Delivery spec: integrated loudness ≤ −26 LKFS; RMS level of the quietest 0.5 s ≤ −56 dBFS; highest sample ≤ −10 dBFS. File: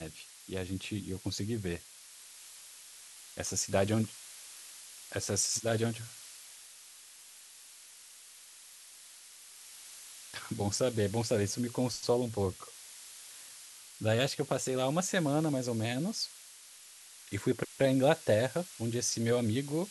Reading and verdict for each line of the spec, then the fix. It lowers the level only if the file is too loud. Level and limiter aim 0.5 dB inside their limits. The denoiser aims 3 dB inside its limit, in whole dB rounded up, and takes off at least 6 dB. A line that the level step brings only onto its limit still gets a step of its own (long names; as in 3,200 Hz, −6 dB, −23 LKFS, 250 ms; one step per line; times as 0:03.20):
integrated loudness −32.5 LKFS: in spec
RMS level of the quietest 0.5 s −54 dBFS: out of spec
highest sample −12.0 dBFS: in spec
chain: broadband denoise 6 dB, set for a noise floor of −54 dBFS